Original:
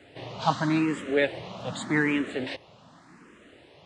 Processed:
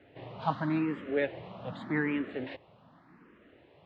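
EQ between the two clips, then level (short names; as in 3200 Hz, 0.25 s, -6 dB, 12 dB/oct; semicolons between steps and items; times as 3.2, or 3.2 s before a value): air absorption 360 m; -4.5 dB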